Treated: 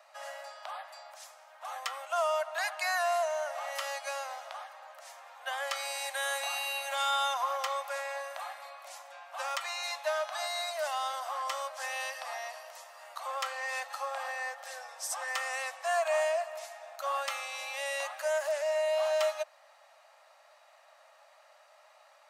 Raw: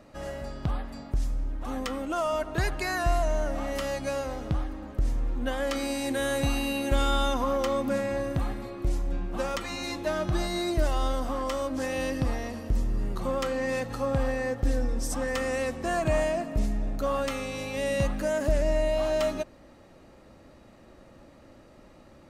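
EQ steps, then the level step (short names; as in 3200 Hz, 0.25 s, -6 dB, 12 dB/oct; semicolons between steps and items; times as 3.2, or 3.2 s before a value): steep high-pass 610 Hz 72 dB/oct; 0.0 dB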